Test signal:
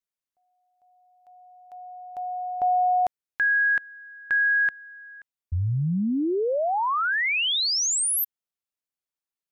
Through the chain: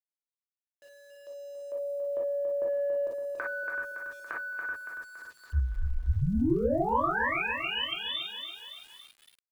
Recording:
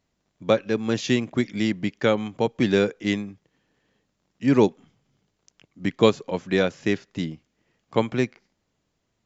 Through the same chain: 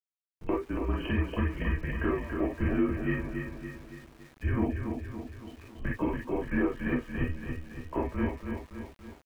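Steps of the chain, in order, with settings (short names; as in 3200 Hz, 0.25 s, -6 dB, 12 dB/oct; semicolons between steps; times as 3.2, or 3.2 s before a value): nonlinear frequency compression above 2600 Hz 4:1; three-band isolator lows -15 dB, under 190 Hz, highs -18 dB, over 2100 Hz; comb 1.6 ms, depth 64%; frequency shift -160 Hz; in parallel at -4 dB: soft clip -18 dBFS; on the sum: compressor 6:1, threshold -32 dBFS; air absorption 320 m; on a send: feedback echo 0.282 s, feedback 53%, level -6 dB; on the sum: non-linear reverb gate 80 ms flat, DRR -4 dB; sample gate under -51.5 dBFS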